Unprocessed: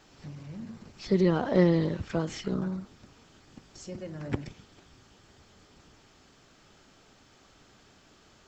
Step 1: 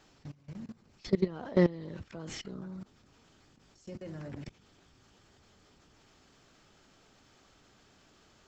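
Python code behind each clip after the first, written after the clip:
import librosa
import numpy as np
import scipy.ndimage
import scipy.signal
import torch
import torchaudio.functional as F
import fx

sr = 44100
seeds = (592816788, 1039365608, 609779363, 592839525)

y = fx.level_steps(x, sr, step_db=21)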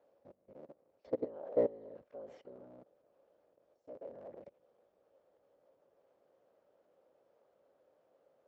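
y = fx.cycle_switch(x, sr, every=3, mode='inverted')
y = fx.bandpass_q(y, sr, hz=550.0, q=6.1)
y = y * 10.0 ** (4.5 / 20.0)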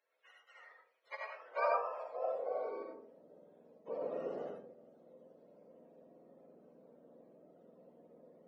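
y = fx.octave_mirror(x, sr, pivot_hz=530.0)
y = fx.rev_freeverb(y, sr, rt60_s=0.56, hf_ratio=0.3, predelay_ms=35, drr_db=-0.5)
y = fx.filter_sweep_highpass(y, sr, from_hz=2000.0, to_hz=210.0, start_s=1.39, end_s=3.21, q=2.5)
y = y * 10.0 ** (8.0 / 20.0)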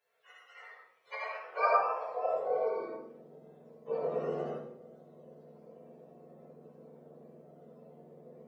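y = fx.rev_fdn(x, sr, rt60_s=0.58, lf_ratio=1.3, hf_ratio=0.9, size_ms=40.0, drr_db=-6.0)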